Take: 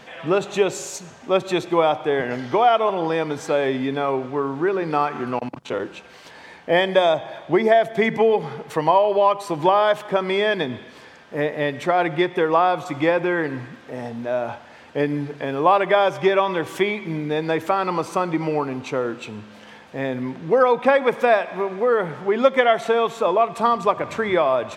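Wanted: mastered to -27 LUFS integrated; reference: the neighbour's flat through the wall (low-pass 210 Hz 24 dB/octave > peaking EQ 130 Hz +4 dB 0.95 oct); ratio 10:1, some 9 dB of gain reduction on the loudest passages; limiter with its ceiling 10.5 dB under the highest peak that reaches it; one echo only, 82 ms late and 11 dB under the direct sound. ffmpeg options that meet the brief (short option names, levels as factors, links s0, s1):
-af "acompressor=threshold=0.1:ratio=10,alimiter=limit=0.112:level=0:latency=1,lowpass=f=210:w=0.5412,lowpass=f=210:w=1.3066,equalizer=f=130:t=o:w=0.95:g=4,aecho=1:1:82:0.282,volume=3.55"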